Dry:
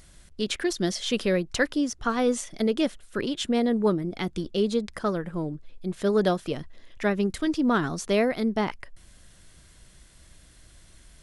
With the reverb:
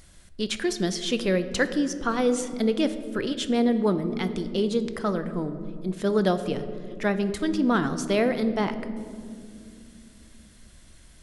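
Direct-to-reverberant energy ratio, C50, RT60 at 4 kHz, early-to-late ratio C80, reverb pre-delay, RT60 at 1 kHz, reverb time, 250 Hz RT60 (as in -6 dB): 10.0 dB, 11.5 dB, 1.1 s, 13.0 dB, 4 ms, 1.8 s, 2.4 s, 4.3 s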